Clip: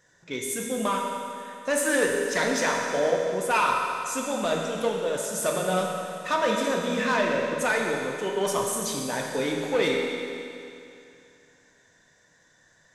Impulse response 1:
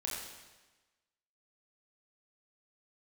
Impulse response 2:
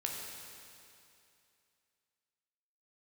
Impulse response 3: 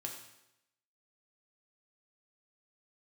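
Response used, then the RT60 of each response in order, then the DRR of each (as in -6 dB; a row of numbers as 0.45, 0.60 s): 2; 1.2, 2.6, 0.85 s; -4.0, -1.0, 0.0 dB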